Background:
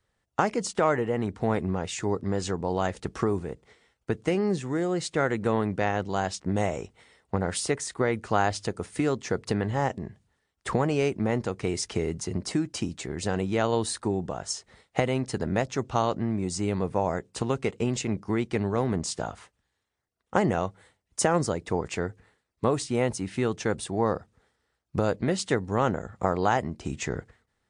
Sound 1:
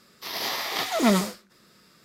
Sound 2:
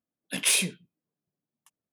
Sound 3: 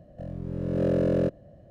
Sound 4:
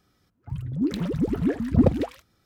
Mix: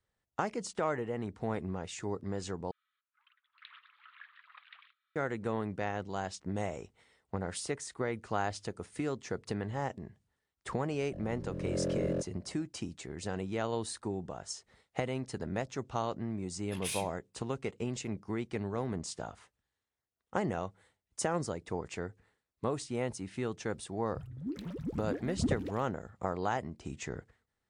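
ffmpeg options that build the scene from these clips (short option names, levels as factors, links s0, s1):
-filter_complex "[4:a]asplit=2[s0][s1];[0:a]volume=0.355[s2];[s0]asuperpass=centerf=2100:order=12:qfactor=0.76[s3];[s2]asplit=2[s4][s5];[s4]atrim=end=2.714[s6];[s3]atrim=end=2.45,asetpts=PTS-STARTPTS,volume=0.316[s7];[s5]atrim=start=5.156[s8];[3:a]atrim=end=1.7,asetpts=PTS-STARTPTS,volume=0.355,afade=t=in:d=0.004:c=hsin,afade=t=out:st=1.696:d=0.004:c=hsin,adelay=10930[s9];[2:a]atrim=end=1.92,asetpts=PTS-STARTPTS,volume=0.178,afade=t=in:d=0.004:c=hsin,afade=t=out:st=1.916:d=0.004:c=hsin,adelay=16390[s10];[s1]atrim=end=2.45,asetpts=PTS-STARTPTS,volume=0.211,afade=t=in:d=0.004:c=hsin,afade=t=out:st=2.446:d=0.004:c=hsin,adelay=23650[s11];[s6][s7]acrossfade=d=0.004:c1=hsin:c2=hsin[s12];[s12][s8]acrossfade=d=0.004:c1=hsin:c2=hsin[s13];[s13][s9][s10][s11]amix=inputs=4:normalize=0"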